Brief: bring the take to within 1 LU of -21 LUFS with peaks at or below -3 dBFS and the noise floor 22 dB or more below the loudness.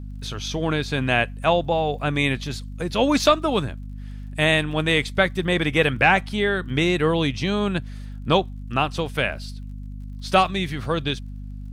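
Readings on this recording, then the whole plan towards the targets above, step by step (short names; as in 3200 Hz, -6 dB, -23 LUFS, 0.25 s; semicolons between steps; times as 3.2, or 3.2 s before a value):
ticks 42/s; hum 50 Hz; harmonics up to 250 Hz; hum level -32 dBFS; loudness -22.0 LUFS; peak -6.0 dBFS; loudness target -21.0 LUFS
-> de-click; de-hum 50 Hz, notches 5; gain +1 dB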